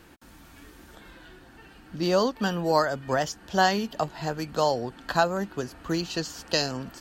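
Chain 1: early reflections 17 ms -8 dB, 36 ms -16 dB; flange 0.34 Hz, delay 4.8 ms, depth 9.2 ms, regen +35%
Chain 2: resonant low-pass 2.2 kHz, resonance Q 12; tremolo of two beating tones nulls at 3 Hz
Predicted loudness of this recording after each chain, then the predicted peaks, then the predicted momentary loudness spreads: -30.5 LUFS, -27.5 LUFS; -12.0 dBFS, -6.0 dBFS; 8 LU, 23 LU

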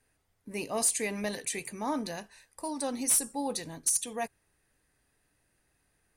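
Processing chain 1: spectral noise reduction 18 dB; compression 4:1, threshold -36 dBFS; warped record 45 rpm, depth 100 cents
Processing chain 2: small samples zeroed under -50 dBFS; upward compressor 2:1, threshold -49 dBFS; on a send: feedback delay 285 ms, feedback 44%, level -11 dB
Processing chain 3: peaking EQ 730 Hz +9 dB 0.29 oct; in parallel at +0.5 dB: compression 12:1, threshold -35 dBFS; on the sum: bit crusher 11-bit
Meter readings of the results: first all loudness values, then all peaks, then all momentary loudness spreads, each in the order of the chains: -39.0 LUFS, -30.5 LUFS, -27.5 LUFS; -22.5 dBFS, -15.5 dBFS, -14.5 dBFS; 8 LU, 15 LU, 12 LU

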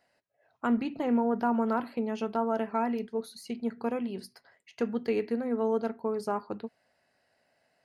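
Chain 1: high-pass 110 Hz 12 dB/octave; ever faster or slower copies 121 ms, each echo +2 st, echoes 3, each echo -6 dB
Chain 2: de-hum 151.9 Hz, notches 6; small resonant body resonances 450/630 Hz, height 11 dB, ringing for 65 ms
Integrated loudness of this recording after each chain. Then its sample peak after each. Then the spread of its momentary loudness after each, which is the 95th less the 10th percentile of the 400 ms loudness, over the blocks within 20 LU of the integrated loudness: -30.0 LUFS, -26.0 LUFS; -13.5 dBFS, -10.5 dBFS; 9 LU, 11 LU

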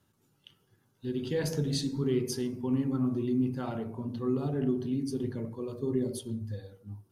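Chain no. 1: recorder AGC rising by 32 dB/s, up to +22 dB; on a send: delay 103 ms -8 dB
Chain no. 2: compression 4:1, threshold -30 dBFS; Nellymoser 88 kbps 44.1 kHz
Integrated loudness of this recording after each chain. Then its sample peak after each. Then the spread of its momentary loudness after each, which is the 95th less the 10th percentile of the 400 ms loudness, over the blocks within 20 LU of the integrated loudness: -30.5 LUFS, -35.5 LUFS; -17.0 dBFS, -22.5 dBFS; 8 LU, 5 LU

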